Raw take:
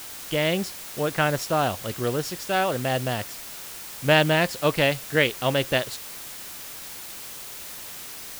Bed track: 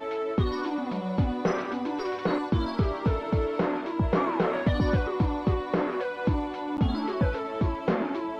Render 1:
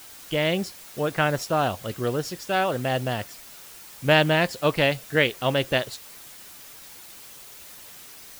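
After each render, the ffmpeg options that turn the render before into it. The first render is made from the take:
-af "afftdn=nr=7:nf=-39"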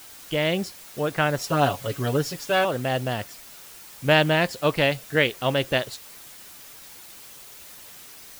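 -filter_complex "[0:a]asettb=1/sr,asplit=3[s0][s1][s2];[s0]atrim=end=1.434[s3];[s1]atrim=start=1.43:end=2.65,asetpts=PTS-STARTPTS,afade=t=in:d=0.004:c=qsin,afade=t=out:st=1.216:d=0.004:c=qsin,aecho=1:1:7.1:0.91,atrim=end_sample=53802[s4];[s2]atrim=start=2.646[s5];[s3][s4]acrossfade=d=0.004:c1=hsin:c2=qsin[s6];[s6][s5]acrossfade=d=0.004:c1=qsin:c2=hsin"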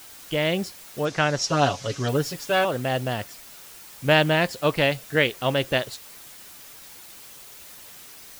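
-filter_complex "[0:a]asettb=1/sr,asplit=3[s0][s1][s2];[s0]atrim=end=1.054[s3];[s1]atrim=start=1.05:end=2.09,asetpts=PTS-STARTPTS,afade=t=in:d=0.004:c=qsin,afade=t=out:st=1.036:d=0.004:c=qsin,lowpass=f=5900:t=q:w=2.8[s4];[s2]atrim=start=2.086[s5];[s3][s4]acrossfade=d=0.004:c1=hsin:c2=qsin[s6];[s6][s5]acrossfade=d=0.004:c1=qsin:c2=hsin"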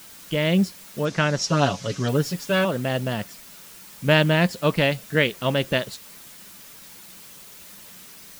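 -af "equalizer=f=190:w=3:g=11,bandreject=f=760:w=12"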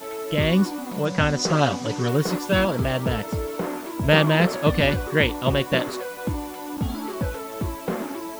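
-filter_complex "[1:a]volume=0.841[s0];[0:a][s0]amix=inputs=2:normalize=0"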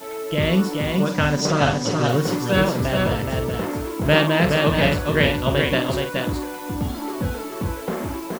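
-filter_complex "[0:a]asplit=2[s0][s1];[s1]adelay=48,volume=0.398[s2];[s0][s2]amix=inputs=2:normalize=0,aecho=1:1:423:0.631"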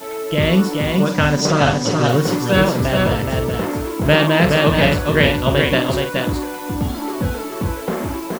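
-af "volume=1.58,alimiter=limit=0.794:level=0:latency=1"

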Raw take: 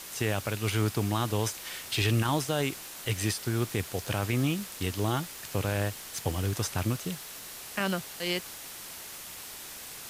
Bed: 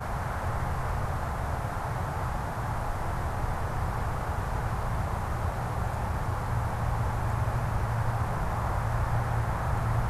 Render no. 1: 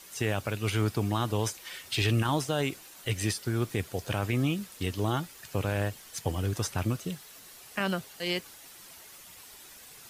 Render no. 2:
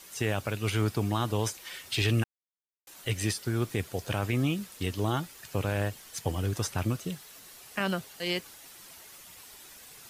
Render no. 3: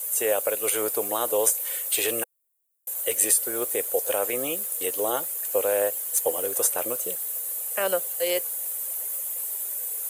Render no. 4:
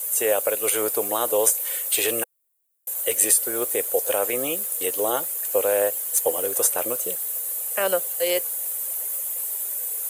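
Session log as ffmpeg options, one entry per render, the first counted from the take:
-af "afftdn=nr=9:nf=-43"
-filter_complex "[0:a]asplit=3[s0][s1][s2];[s0]atrim=end=2.24,asetpts=PTS-STARTPTS,afade=t=out:st=2.236:d=0.004:c=hsin[s3];[s1]atrim=start=2.24:end=2.87,asetpts=PTS-STARTPTS,volume=0[s4];[s2]atrim=start=2.87,asetpts=PTS-STARTPTS,afade=t=in:d=0.004:c=hsin[s5];[s3][s4][s5]concat=n=3:v=0:a=1"
-af "highpass=f=510:t=q:w=4.9,aexciter=amount=14.2:drive=2.3:freq=7500"
-af "volume=1.33"

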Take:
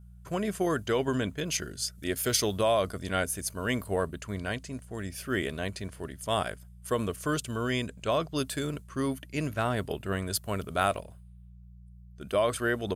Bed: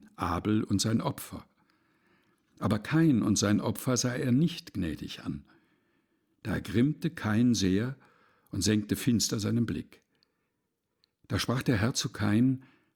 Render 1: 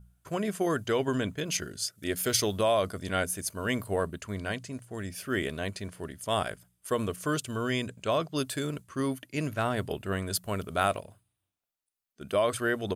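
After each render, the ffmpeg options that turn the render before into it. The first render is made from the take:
-af "bandreject=f=60:t=h:w=4,bandreject=f=120:t=h:w=4,bandreject=f=180:t=h:w=4"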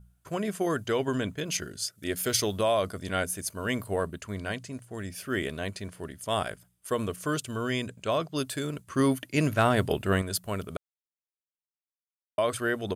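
-filter_complex "[0:a]asettb=1/sr,asplit=3[s0][s1][s2];[s0]atrim=end=8.874[s3];[s1]atrim=start=8.87:end=10.22,asetpts=PTS-STARTPTS,afade=t=in:d=0.004:c=qsin,afade=t=out:st=1.346:d=0.004:c=qsin,acontrast=58[s4];[s2]atrim=start=10.216[s5];[s3][s4]acrossfade=d=0.004:c1=hsin:c2=qsin[s6];[s6][s5]acrossfade=d=0.004:c1=qsin:c2=hsin,asplit=3[s7][s8][s9];[s7]atrim=end=10.77,asetpts=PTS-STARTPTS,afade=t=out:st=10.766:d=0.004:c=hsin[s10];[s8]atrim=start=10.77:end=12.38,asetpts=PTS-STARTPTS,volume=0[s11];[s9]atrim=start=12.38,asetpts=PTS-STARTPTS,afade=t=in:d=0.004:c=hsin[s12];[s10][s11][s12]concat=n=3:v=0:a=1"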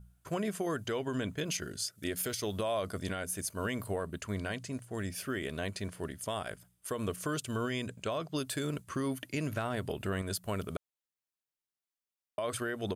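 -af "acompressor=threshold=0.0447:ratio=6,alimiter=limit=0.0631:level=0:latency=1:release=155"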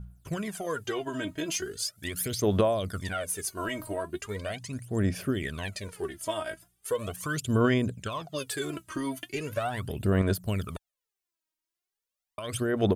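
-af "aphaser=in_gain=1:out_gain=1:delay=3.2:decay=0.75:speed=0.39:type=sinusoidal"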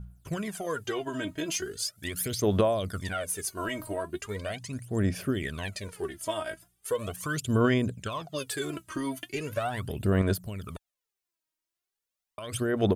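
-filter_complex "[0:a]asettb=1/sr,asplit=3[s0][s1][s2];[s0]atrim=end=10.414[s3];[s1]atrim=start=10.41:end=12.52,asetpts=PTS-STARTPTS,afade=t=in:d=0.004:c=qsin,afade=t=out:st=2.106:d=0.004:c=qsin,acompressor=threshold=0.0178:ratio=2.5:attack=3.2:release=140:knee=1:detection=peak[s4];[s2]atrim=start=12.516[s5];[s3][s4]acrossfade=d=0.004:c1=hsin:c2=qsin[s6];[s6][s5]acrossfade=d=0.004:c1=qsin:c2=hsin"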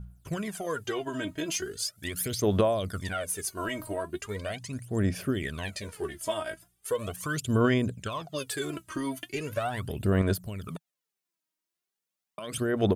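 -filter_complex "[0:a]asettb=1/sr,asplit=3[s0][s1][s2];[s0]atrim=end=5.674[s3];[s1]atrim=start=5.67:end=6.34,asetpts=PTS-STARTPTS,afade=t=in:d=0.004:c=qsin,afade=t=out:st=0.666:d=0.004:c=qsin,asplit=2[s4][s5];[s5]adelay=14,volume=0.447[s6];[s4][s6]amix=inputs=2:normalize=0,atrim=end_sample=29547[s7];[s2]atrim=start=6.336[s8];[s3][s7]acrossfade=d=0.004:c1=hsin:c2=qsin[s9];[s9][s8]acrossfade=d=0.004:c1=qsin:c2=hsin,asettb=1/sr,asplit=3[s10][s11][s12];[s10]atrim=end=10.684[s13];[s11]atrim=start=10.68:end=12.58,asetpts=PTS-STARTPTS,afade=t=in:d=0.004:c=qsin,afade=t=out:st=1.896:d=0.004:c=qsin,lowshelf=f=120:t=q:w=3:g=-10.5[s14];[s12]atrim=start=12.576[s15];[s13][s14]acrossfade=d=0.004:c1=hsin:c2=qsin[s16];[s16][s15]acrossfade=d=0.004:c1=qsin:c2=hsin"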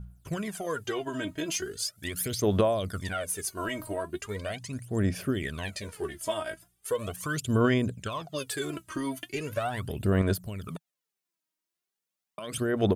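-af anull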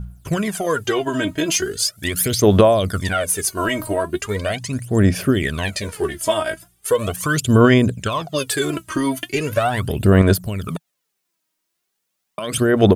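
-af "volume=3.98,alimiter=limit=0.794:level=0:latency=1"

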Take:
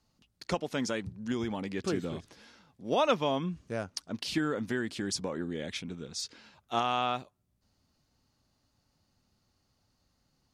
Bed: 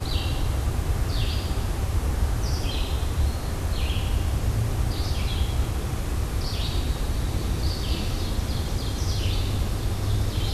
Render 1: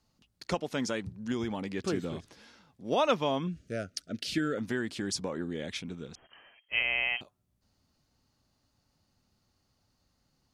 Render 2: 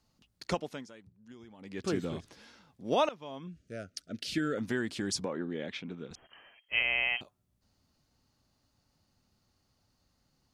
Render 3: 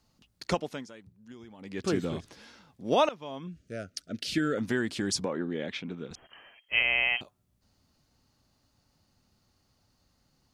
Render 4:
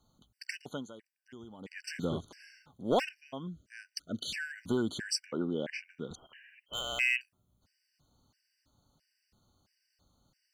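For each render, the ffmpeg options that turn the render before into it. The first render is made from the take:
-filter_complex "[0:a]asettb=1/sr,asplit=3[s0][s1][s2];[s0]atrim=end=3.474[s3];[s1]atrim=start=3.47:end=4.58,asetpts=PTS-STARTPTS,afade=t=in:d=0.004:c=qsin,afade=t=out:st=1.106:d=0.004:c=qsin,asuperstop=centerf=940:order=8:qfactor=1.6[s4];[s2]atrim=start=4.576[s5];[s3][s4]acrossfade=d=0.004:c1=hsin:c2=qsin[s6];[s6][s5]acrossfade=d=0.004:c1=qsin:c2=hsin,asettb=1/sr,asplit=3[s7][s8][s9];[s7]atrim=end=6.154[s10];[s8]atrim=start=6.15:end=7.21,asetpts=PTS-STARTPTS,afade=t=in:d=0.004:c=qsin,afade=t=out:st=1.056:d=0.004:c=qsin,lowpass=f=2800:t=q:w=0.5098,lowpass=f=2800:t=q:w=0.6013,lowpass=f=2800:t=q:w=0.9,lowpass=f=2800:t=q:w=2.563,afreqshift=-3300[s11];[s9]atrim=start=7.206[s12];[s10][s11]acrossfade=d=0.004:c1=hsin:c2=qsin[s13];[s13][s12]acrossfade=d=0.004:c1=qsin:c2=hsin"
-filter_complex "[0:a]asettb=1/sr,asplit=3[s0][s1][s2];[s0]atrim=end=5.254[s3];[s1]atrim=start=5.25:end=6.11,asetpts=PTS-STARTPTS,afade=t=in:d=0.004:c=qsin,afade=t=out:st=0.856:d=0.004:c=qsin,highpass=160,lowpass=3200[s4];[s2]atrim=start=6.106[s5];[s3][s4]acrossfade=d=0.004:c1=hsin:c2=qsin[s6];[s6][s5]acrossfade=d=0.004:c1=qsin:c2=hsin,asplit=4[s7][s8][s9][s10];[s7]atrim=end=0.86,asetpts=PTS-STARTPTS,afade=t=out:st=0.51:d=0.35:silence=0.112202[s11];[s8]atrim=start=0.86:end=1.58,asetpts=PTS-STARTPTS,volume=0.112[s12];[s9]atrim=start=1.58:end=3.09,asetpts=PTS-STARTPTS,afade=t=in:d=0.35:silence=0.112202,afade=t=out:st=1.506:d=0.004:c=hsin:silence=0.0841395[s13];[s10]atrim=start=3.09,asetpts=PTS-STARTPTS,afade=t=in:d=1.57:silence=0.0841395[s14];[s11][s12][s13][s14]concat=n=4:v=0:a=1"
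-af "volume=1.5"
-af "volume=10,asoftclip=hard,volume=0.1,afftfilt=real='re*gt(sin(2*PI*1.5*pts/sr)*(1-2*mod(floor(b*sr/1024/1500),2)),0)':imag='im*gt(sin(2*PI*1.5*pts/sr)*(1-2*mod(floor(b*sr/1024/1500),2)),0)':win_size=1024:overlap=0.75"

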